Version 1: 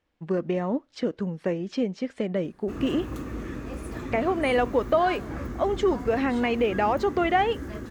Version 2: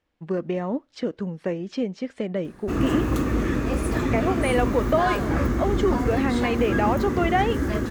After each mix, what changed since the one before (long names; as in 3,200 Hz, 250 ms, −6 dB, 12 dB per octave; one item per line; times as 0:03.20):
background +11.0 dB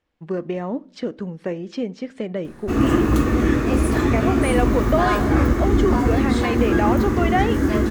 reverb: on, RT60 0.40 s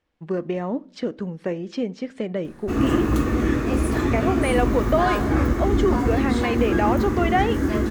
background −3.0 dB